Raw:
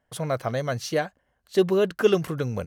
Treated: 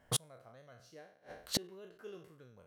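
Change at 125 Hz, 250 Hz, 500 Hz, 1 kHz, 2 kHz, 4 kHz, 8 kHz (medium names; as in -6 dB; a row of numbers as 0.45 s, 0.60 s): -18.0 dB, -20.5 dB, -26.0 dB, -20.0 dB, -20.5 dB, -4.5 dB, -0.5 dB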